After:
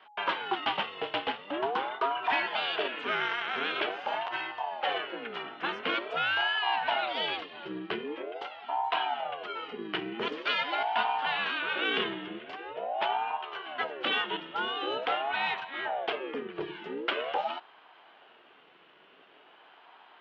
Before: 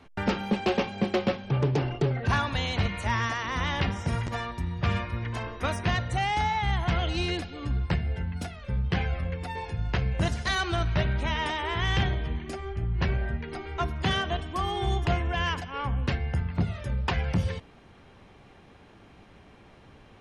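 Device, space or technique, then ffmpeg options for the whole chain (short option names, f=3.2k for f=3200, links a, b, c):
voice changer toy: -af "aeval=exprs='val(0)*sin(2*PI*550*n/s+550*0.55/0.45*sin(2*PI*0.45*n/s))':c=same,highpass=410,equalizer=f=550:t=q:w=4:g=-7,equalizer=f=1.5k:t=q:w=4:g=4,equalizer=f=3k:t=q:w=4:g=9,lowpass=f=3.7k:w=0.5412,lowpass=f=3.7k:w=1.3066"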